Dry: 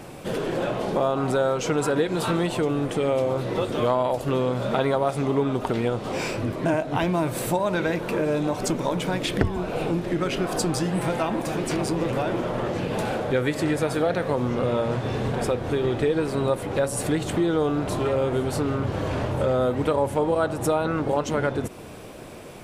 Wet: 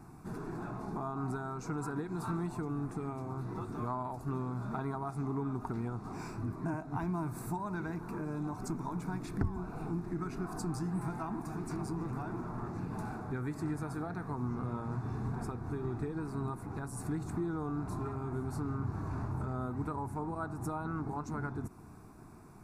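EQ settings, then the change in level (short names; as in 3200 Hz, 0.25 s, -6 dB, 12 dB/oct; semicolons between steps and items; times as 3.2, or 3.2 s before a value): bell 1900 Hz -8.5 dB 0.59 oct; high shelf 2500 Hz -8.5 dB; fixed phaser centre 1300 Hz, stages 4; -7.5 dB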